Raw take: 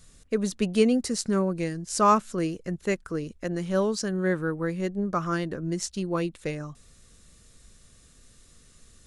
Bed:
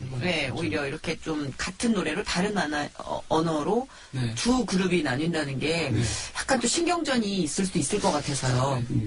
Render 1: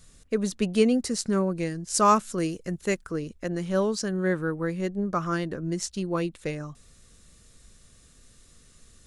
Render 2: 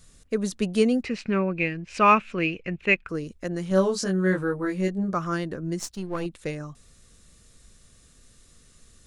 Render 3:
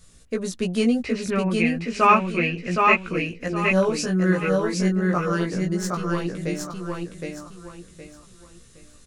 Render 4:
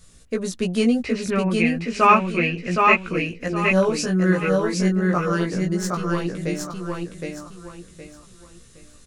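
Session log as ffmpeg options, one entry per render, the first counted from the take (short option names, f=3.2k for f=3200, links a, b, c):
-filter_complex "[0:a]asettb=1/sr,asplit=3[a][b][c];[a]atrim=end=1.944[d];[b]atrim=start=1.94:end=3.05,asetpts=PTS-STARTPTS,afade=t=in:d=0.004:c=qsin,afade=t=out:st=1.106:d=0.004:c=qsin,highshelf=f=5.2k:g=7.5[e];[c]atrim=start=3.046[f];[d][e]acrossfade=d=0.004:c1=hsin:c2=qsin[g];[g][f]acrossfade=d=0.004:c1=qsin:c2=hsin"
-filter_complex "[0:a]asettb=1/sr,asplit=3[a][b][c];[a]atrim=end=1.034[d];[b]atrim=start=1.03:end=3.09,asetpts=PTS-STARTPTS,afade=t=in:d=0.004:c=qsin,afade=t=out:st=2.056:d=0.004:c=qsin,lowpass=f=2.5k:t=q:w=9.8[e];[c]atrim=start=3.086[f];[d][e]acrossfade=d=0.004:c1=hsin:c2=qsin[g];[g][f]acrossfade=d=0.004:c1=qsin:c2=hsin,asettb=1/sr,asplit=3[h][i][j];[h]atrim=end=3.694[k];[i]atrim=start=3.69:end=5.14,asetpts=PTS-STARTPTS,afade=t=in:d=0.004:c=qsin,afade=t=out:st=1.446:d=0.004:c=qsin,asplit=2[l][m];[m]adelay=21,volume=-2dB[n];[l][n]amix=inputs=2:normalize=0,atrim=end_sample=63945[o];[j]atrim=start=5.136[p];[k][o]acrossfade=d=0.004:c1=hsin:c2=qsin[q];[q][p]acrossfade=d=0.004:c1=qsin:c2=hsin,asettb=1/sr,asplit=3[r][s][t];[r]atrim=end=5.794[u];[s]atrim=start=5.79:end=6.26,asetpts=PTS-STARTPTS,afade=t=in:d=0.004:c=qsin,afade=t=out:st=0.466:d=0.004:c=qsin,aeval=exprs='if(lt(val(0),0),0.447*val(0),val(0))':c=same[v];[t]atrim=start=6.256[w];[u][v]acrossfade=d=0.004:c1=hsin:c2=qsin[x];[x][w]acrossfade=d=0.004:c1=qsin:c2=hsin"
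-filter_complex "[0:a]asplit=2[a][b];[b]adelay=17,volume=-3dB[c];[a][c]amix=inputs=2:normalize=0,aecho=1:1:766|1532|2298|3064:0.708|0.212|0.0637|0.0191"
-af "volume=1.5dB"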